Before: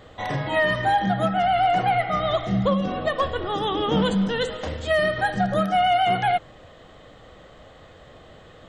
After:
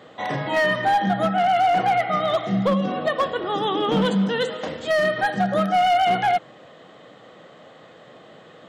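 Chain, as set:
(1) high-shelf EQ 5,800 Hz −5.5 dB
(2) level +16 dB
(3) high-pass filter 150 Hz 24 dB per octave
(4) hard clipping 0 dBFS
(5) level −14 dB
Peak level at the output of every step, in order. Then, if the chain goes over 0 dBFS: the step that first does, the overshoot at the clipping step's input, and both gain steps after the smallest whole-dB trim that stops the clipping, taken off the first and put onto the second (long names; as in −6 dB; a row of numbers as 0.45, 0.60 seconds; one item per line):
−12.5, +3.5, +5.5, 0.0, −14.0 dBFS
step 2, 5.5 dB
step 2 +10 dB, step 5 −8 dB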